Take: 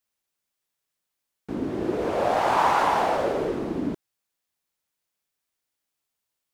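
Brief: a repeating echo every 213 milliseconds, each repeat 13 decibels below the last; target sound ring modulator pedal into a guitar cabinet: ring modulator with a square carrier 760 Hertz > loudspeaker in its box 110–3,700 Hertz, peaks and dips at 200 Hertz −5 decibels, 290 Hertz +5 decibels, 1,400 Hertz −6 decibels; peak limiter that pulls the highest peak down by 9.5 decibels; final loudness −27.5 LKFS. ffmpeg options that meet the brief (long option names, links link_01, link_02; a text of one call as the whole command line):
ffmpeg -i in.wav -af "alimiter=limit=-18.5dB:level=0:latency=1,aecho=1:1:213|426|639:0.224|0.0493|0.0108,aeval=exprs='val(0)*sgn(sin(2*PI*760*n/s))':channel_layout=same,highpass=110,equalizer=frequency=200:width_type=q:width=4:gain=-5,equalizer=frequency=290:width_type=q:width=4:gain=5,equalizer=frequency=1400:width_type=q:width=4:gain=-6,lowpass=frequency=3700:width=0.5412,lowpass=frequency=3700:width=1.3066,volume=1.5dB" out.wav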